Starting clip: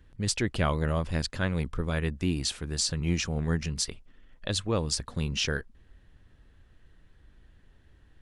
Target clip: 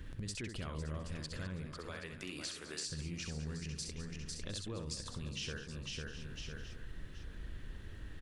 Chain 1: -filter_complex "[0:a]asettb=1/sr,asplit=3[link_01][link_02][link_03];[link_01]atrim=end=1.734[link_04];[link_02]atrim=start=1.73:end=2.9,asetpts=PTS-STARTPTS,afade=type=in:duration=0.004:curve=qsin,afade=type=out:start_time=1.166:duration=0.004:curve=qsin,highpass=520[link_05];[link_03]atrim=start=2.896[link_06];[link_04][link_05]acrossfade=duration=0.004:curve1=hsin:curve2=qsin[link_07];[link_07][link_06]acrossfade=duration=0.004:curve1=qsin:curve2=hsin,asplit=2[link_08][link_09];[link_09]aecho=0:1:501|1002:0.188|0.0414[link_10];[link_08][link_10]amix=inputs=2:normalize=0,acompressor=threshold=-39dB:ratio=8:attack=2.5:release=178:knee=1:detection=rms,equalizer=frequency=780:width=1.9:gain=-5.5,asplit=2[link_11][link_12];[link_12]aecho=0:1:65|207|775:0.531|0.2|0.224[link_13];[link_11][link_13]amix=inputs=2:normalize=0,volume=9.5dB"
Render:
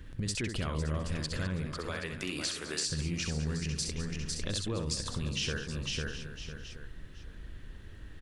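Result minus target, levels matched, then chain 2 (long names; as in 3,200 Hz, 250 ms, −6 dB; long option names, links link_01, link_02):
downward compressor: peak gain reduction −8.5 dB
-filter_complex "[0:a]asettb=1/sr,asplit=3[link_01][link_02][link_03];[link_01]atrim=end=1.734[link_04];[link_02]atrim=start=1.73:end=2.9,asetpts=PTS-STARTPTS,afade=type=in:duration=0.004:curve=qsin,afade=type=out:start_time=1.166:duration=0.004:curve=qsin,highpass=520[link_05];[link_03]atrim=start=2.896[link_06];[link_04][link_05]acrossfade=duration=0.004:curve1=hsin:curve2=qsin[link_07];[link_07][link_06]acrossfade=duration=0.004:curve1=qsin:curve2=hsin,asplit=2[link_08][link_09];[link_09]aecho=0:1:501|1002:0.188|0.0414[link_10];[link_08][link_10]amix=inputs=2:normalize=0,acompressor=threshold=-48.5dB:ratio=8:attack=2.5:release=178:knee=1:detection=rms,equalizer=frequency=780:width=1.9:gain=-5.5,asplit=2[link_11][link_12];[link_12]aecho=0:1:65|207|775:0.531|0.2|0.224[link_13];[link_11][link_13]amix=inputs=2:normalize=0,volume=9.5dB"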